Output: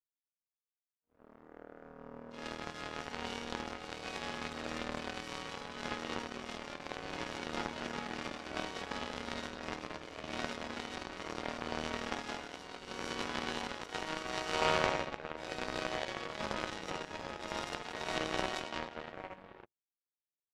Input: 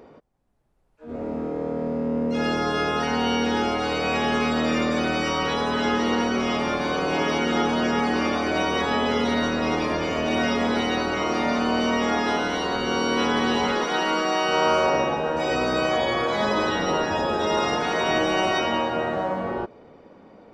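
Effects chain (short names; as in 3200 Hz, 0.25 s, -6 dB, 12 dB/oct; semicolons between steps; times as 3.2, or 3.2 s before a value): notches 60/120/180/240/300/360/420 Hz; power-law curve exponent 3; gain +1 dB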